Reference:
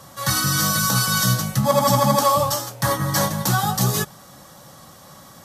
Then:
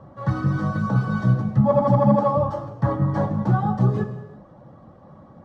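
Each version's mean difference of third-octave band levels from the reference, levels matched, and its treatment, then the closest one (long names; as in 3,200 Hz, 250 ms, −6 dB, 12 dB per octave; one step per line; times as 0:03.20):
12.5 dB: reverb reduction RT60 0.52 s
Bessel low-pass filter 570 Hz, order 2
reverb whose tail is shaped and stops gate 400 ms falling, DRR 7 dB
level +3.5 dB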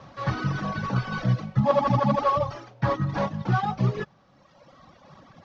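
9.5 dB: variable-slope delta modulation 32 kbit/s
low-pass filter 1,300 Hz 6 dB per octave
reverb reduction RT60 1.7 s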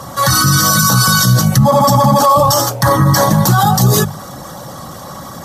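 4.0 dB: spectral envelope exaggerated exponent 1.5
mains-hum notches 50/100/150/200 Hz
boost into a limiter +16.5 dB
level −1 dB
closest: third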